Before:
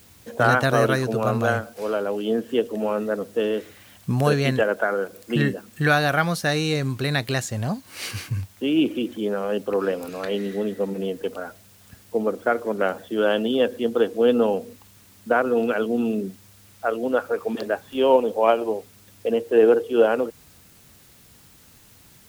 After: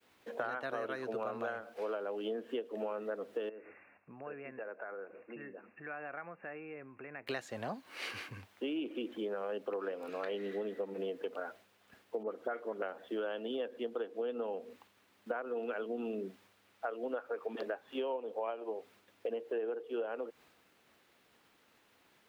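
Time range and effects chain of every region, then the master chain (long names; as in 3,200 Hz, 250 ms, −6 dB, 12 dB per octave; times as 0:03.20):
0:03.49–0:07.27: linear-phase brick-wall low-pass 2,800 Hz + downward compressor 3 to 1, threshold −40 dBFS
0:12.23–0:12.82: notch filter 2,400 Hz, Q 18 + all-pass dispersion highs, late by 67 ms, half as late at 2,500 Hz
whole clip: downward expander −47 dBFS; three-way crossover with the lows and the highs turned down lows −21 dB, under 270 Hz, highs −16 dB, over 3,500 Hz; downward compressor 12 to 1, threshold −29 dBFS; level −5 dB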